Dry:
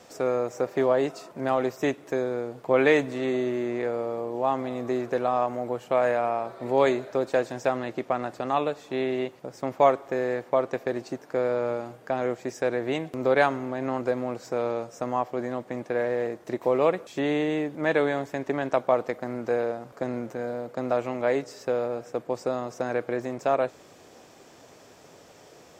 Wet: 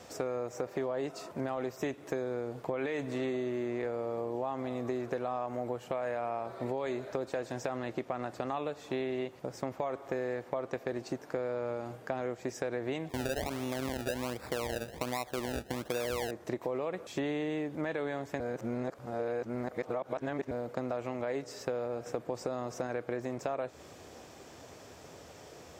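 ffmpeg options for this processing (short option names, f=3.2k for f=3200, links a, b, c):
-filter_complex "[0:a]asettb=1/sr,asplit=3[a][b][c];[a]atrim=end=13.094[d];[b]atrim=start=13.09:end=16.31,asetpts=PTS-STARTPTS,afade=t=in:d=0.004:c=qsin,afade=t=out:st=3.216:d=0.004:c=qsin,acrusher=samples=28:mix=1:aa=0.000001:lfo=1:lforange=28:lforate=1.3[e];[c]atrim=start=16.306[f];[d][e]acrossfade=d=0.004:c1=hsin:c2=qsin[g];[g][f]acrossfade=d=0.004:c1=qsin:c2=hsin,asplit=5[h][i][j][k][l];[h]atrim=end=18.402[m];[i]atrim=start=18.398:end=20.512,asetpts=PTS-STARTPTS,areverse[n];[j]atrim=start=20.508:end=22.062[o];[k]atrim=start=22.058:end=22.872,asetpts=PTS-STARTPTS,volume=3.5dB[p];[l]atrim=start=22.868[q];[m][n]acrossfade=d=0.004:c1=hsin:c2=hsin[r];[r][o]acrossfade=d=0.004:c1=hsin:c2=hsin[s];[s][p]acrossfade=d=0.004:c1=hsin:c2=hsin[t];[t][q]acrossfade=d=0.004:c1=hsin:c2=hsin,equalizer=f=71:t=o:w=0.89:g=11,alimiter=limit=-16.5dB:level=0:latency=1,acompressor=threshold=-31dB:ratio=6"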